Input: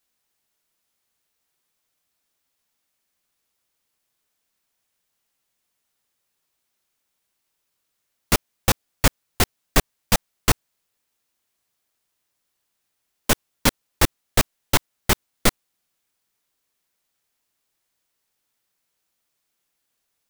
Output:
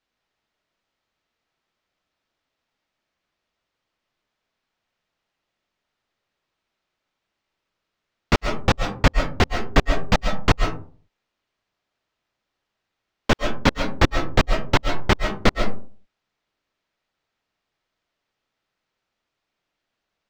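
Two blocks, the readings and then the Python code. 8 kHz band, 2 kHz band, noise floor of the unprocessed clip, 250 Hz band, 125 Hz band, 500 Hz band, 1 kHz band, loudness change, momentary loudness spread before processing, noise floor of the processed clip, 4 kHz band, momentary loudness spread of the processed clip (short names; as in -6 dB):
-12.0 dB, +2.0 dB, -77 dBFS, +3.5 dB, +3.5 dB, +4.0 dB, +3.5 dB, +0.5 dB, 3 LU, -82 dBFS, -1.5 dB, 4 LU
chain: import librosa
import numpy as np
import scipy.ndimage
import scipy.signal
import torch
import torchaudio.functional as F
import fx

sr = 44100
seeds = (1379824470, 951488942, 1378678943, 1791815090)

y = fx.air_absorb(x, sr, metres=190.0)
y = fx.rev_freeverb(y, sr, rt60_s=0.43, hf_ratio=0.4, predelay_ms=95, drr_db=5.0)
y = y * librosa.db_to_amplitude(3.0)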